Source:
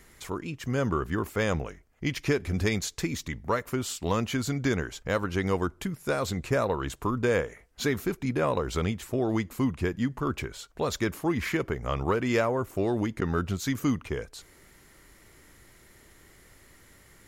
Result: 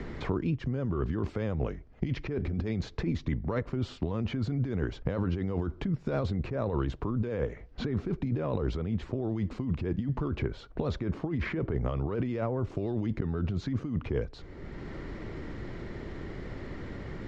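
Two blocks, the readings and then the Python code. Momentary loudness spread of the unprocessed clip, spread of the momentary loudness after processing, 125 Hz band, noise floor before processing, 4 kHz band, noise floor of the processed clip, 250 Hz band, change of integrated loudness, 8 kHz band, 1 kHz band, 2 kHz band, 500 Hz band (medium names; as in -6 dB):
7 LU, 10 LU, +1.0 dB, -57 dBFS, -9.5 dB, -49 dBFS, -2.5 dB, -3.5 dB, under -20 dB, -9.0 dB, -10.0 dB, -5.0 dB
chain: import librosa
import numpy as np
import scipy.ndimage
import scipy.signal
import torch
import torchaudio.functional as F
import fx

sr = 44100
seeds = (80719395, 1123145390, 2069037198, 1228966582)

y = scipy.signal.sosfilt(scipy.signal.butter(4, 4700.0, 'lowpass', fs=sr, output='sos'), x)
y = fx.tilt_shelf(y, sr, db=8.0, hz=830.0)
y = fx.over_compress(y, sr, threshold_db=-27.0, ratio=-1.0)
y = fx.vibrato(y, sr, rate_hz=14.0, depth_cents=36.0)
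y = fx.band_squash(y, sr, depth_pct=70)
y = y * librosa.db_to_amplitude(-3.5)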